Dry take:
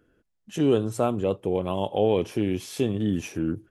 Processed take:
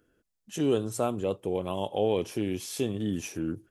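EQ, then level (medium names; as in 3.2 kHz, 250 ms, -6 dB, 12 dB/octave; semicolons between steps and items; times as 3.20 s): tone controls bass -2 dB, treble +7 dB; -4.0 dB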